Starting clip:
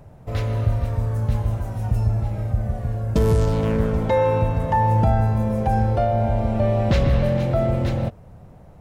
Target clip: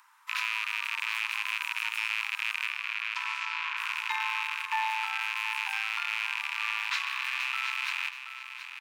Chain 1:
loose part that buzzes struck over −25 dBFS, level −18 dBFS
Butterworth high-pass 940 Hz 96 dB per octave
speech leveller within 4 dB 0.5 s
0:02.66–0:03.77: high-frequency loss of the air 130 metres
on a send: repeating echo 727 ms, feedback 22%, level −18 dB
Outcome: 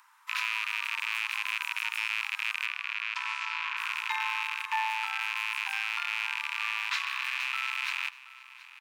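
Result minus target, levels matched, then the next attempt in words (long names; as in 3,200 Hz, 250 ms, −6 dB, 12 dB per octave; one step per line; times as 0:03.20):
echo-to-direct −8 dB
loose part that buzzes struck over −25 dBFS, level −18 dBFS
Butterworth high-pass 940 Hz 96 dB per octave
speech leveller within 4 dB 0.5 s
0:02.66–0:03.77: high-frequency loss of the air 130 metres
on a send: repeating echo 727 ms, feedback 22%, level −10 dB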